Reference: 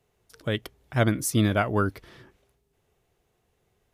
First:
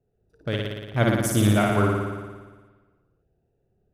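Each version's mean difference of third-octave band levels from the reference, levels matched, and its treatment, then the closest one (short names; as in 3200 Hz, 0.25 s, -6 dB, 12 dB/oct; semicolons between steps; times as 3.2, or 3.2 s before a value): 9.0 dB: Wiener smoothing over 41 samples; on a send: flutter echo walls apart 9.9 m, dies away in 1.4 s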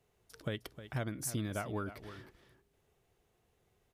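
6.5 dB: compressor 12:1, threshold -30 dBFS, peak gain reduction 14.5 dB; echo 0.31 s -12.5 dB; gain -3.5 dB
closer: second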